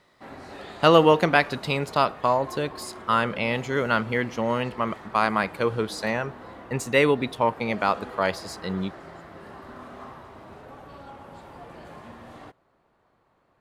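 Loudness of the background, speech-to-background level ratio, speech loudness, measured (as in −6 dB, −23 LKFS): −42.5 LKFS, 18.5 dB, −24.0 LKFS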